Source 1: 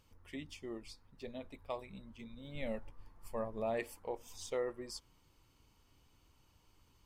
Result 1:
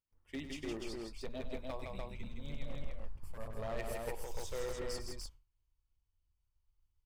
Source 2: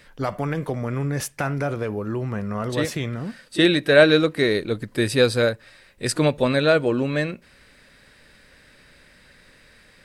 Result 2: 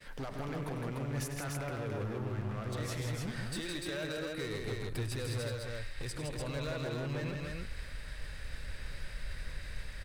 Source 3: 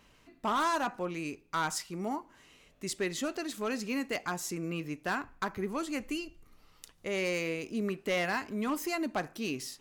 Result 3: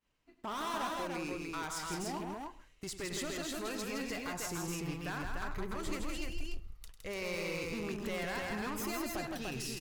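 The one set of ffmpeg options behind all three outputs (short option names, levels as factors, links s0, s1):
-filter_complex "[0:a]agate=range=0.0224:threshold=0.00398:ratio=3:detection=peak,asubboost=boost=10.5:cutoff=72,acompressor=threshold=0.0178:ratio=6,alimiter=level_in=3.16:limit=0.0631:level=0:latency=1:release=142,volume=0.316,aeval=exprs='0.0133*(abs(mod(val(0)/0.0133+3,4)-2)-1)':c=same,asplit=2[s0][s1];[s1]aecho=0:1:99|163|295:0.282|0.596|0.708[s2];[s0][s2]amix=inputs=2:normalize=0,volume=1.5"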